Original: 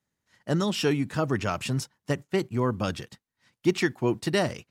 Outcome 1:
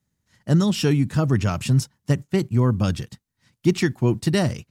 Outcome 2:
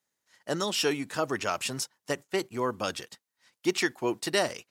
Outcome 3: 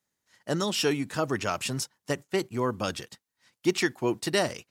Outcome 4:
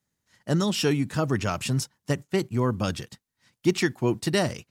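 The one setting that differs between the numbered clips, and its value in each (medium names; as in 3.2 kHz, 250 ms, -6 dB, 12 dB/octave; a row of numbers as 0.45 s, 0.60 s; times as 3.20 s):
tone controls, bass: +12 dB, -15 dB, -7 dB, +3 dB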